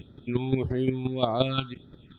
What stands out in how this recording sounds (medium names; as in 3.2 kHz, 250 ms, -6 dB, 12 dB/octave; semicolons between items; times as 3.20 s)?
chopped level 5.7 Hz, depth 65%, duty 10%; phasing stages 6, 1.7 Hz, lowest notch 500–2700 Hz; Opus